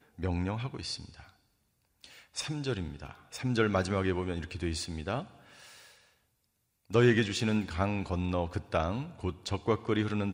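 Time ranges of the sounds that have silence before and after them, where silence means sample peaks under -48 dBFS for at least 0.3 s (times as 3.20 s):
2.04–5.90 s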